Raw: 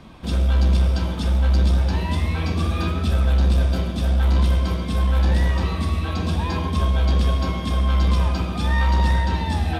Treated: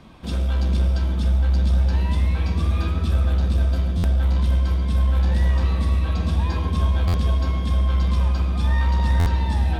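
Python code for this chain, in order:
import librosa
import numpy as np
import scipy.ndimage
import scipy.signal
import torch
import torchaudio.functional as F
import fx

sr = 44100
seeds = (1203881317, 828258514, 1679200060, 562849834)

p1 = fx.rider(x, sr, range_db=10, speed_s=2.0)
p2 = p1 + fx.echo_filtered(p1, sr, ms=462, feedback_pct=60, hz=1000.0, wet_db=-5, dry=0)
p3 = fx.buffer_glitch(p2, sr, at_s=(3.97, 7.07, 9.19), block=512, repeats=5)
y = F.gain(torch.from_numpy(p3), -5.5).numpy()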